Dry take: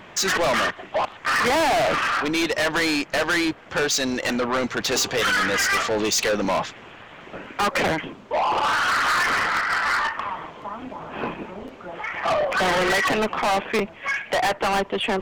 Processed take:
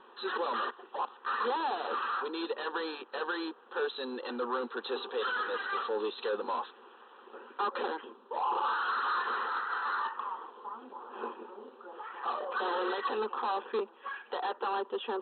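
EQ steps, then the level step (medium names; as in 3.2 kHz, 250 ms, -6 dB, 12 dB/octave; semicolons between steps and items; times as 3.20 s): brick-wall FIR band-pass 230–4200 Hz; distance through air 76 m; static phaser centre 430 Hz, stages 8; -7.0 dB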